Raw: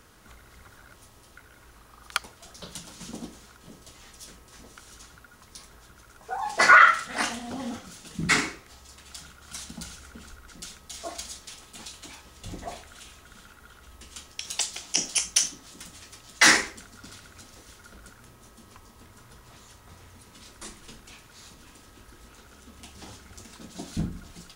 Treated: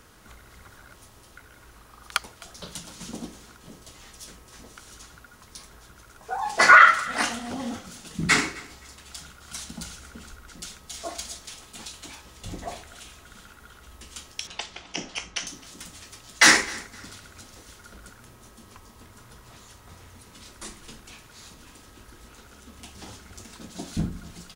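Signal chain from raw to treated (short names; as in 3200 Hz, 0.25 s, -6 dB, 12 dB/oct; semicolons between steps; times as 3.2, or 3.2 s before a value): 14.47–15.47 LPF 2700 Hz 12 dB/oct; feedback echo 0.26 s, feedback 25%, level -21.5 dB; gain +2 dB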